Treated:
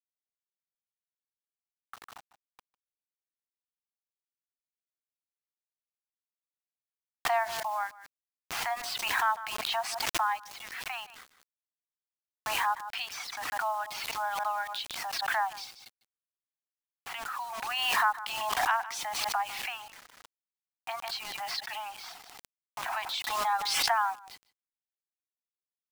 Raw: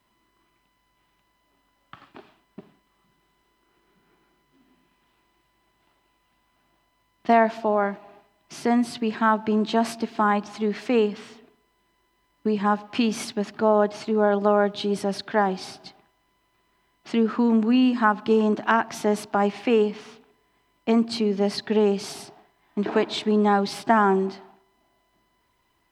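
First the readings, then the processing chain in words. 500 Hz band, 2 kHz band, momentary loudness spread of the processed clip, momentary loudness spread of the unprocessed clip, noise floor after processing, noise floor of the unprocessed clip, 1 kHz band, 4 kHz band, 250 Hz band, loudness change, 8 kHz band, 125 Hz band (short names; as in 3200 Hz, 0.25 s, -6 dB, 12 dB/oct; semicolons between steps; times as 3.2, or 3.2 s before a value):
-19.0 dB, -2.0 dB, 15 LU, 10 LU, under -85 dBFS, -69 dBFS, -5.0 dB, +1.5 dB, -35.5 dB, -8.5 dB, +3.0 dB, under -25 dB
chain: reverb removal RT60 0.86 s; steep high-pass 700 Hz 96 dB/oct; low-pass opened by the level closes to 1600 Hz, open at -24.5 dBFS; in parallel at +1.5 dB: compressor 8:1, threshold -37 dBFS, peak gain reduction 20.5 dB; on the sum: bit-crush 7-bit; on a send: echo 0.151 s -23.5 dB; on the sum: backwards sustainer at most 29 dB/s; gain -7.5 dB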